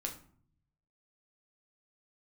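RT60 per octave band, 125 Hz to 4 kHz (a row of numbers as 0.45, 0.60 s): 1.2, 0.85, 0.55, 0.50, 0.40, 0.30 s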